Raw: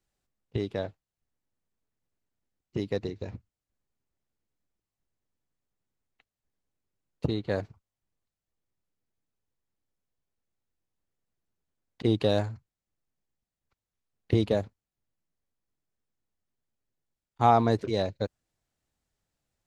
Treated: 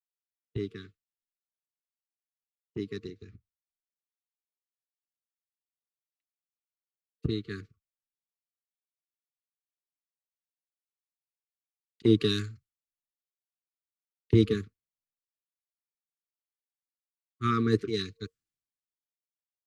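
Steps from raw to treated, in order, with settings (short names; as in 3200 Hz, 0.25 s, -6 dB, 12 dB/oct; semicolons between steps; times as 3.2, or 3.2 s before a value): low shelf 87 Hz -6 dB; FFT band-reject 460–1100 Hz; three-band expander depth 100%; gain -3 dB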